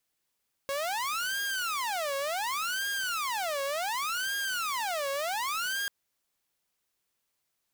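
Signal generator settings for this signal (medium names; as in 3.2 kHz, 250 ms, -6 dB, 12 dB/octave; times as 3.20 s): siren wail 550–1620 Hz 0.68 per s saw -27 dBFS 5.19 s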